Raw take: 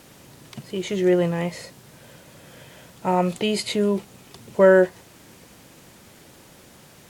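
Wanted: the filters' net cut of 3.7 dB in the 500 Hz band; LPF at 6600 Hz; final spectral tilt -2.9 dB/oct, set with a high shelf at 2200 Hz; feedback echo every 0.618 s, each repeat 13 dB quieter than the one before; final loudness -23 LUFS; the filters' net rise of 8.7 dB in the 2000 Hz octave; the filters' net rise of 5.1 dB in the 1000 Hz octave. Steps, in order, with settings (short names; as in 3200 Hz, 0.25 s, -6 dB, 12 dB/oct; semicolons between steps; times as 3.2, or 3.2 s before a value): LPF 6600 Hz; bell 500 Hz -7 dB; bell 1000 Hz +6 dB; bell 2000 Hz +7.5 dB; high shelf 2200 Hz +4.5 dB; feedback echo 0.618 s, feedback 22%, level -13 dB; gain -1 dB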